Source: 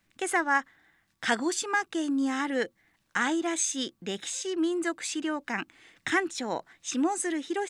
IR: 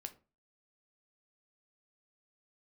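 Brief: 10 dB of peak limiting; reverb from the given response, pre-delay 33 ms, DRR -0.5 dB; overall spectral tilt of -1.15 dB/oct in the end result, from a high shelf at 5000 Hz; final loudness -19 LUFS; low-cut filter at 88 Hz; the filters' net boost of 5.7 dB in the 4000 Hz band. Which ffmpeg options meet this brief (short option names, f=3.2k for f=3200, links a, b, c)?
-filter_complex "[0:a]highpass=88,equalizer=f=4k:t=o:g=4.5,highshelf=f=5k:g=6.5,alimiter=limit=-19dB:level=0:latency=1,asplit=2[a][b];[1:a]atrim=start_sample=2205,adelay=33[c];[b][c]afir=irnorm=-1:irlink=0,volume=4.5dB[d];[a][d]amix=inputs=2:normalize=0,volume=7.5dB"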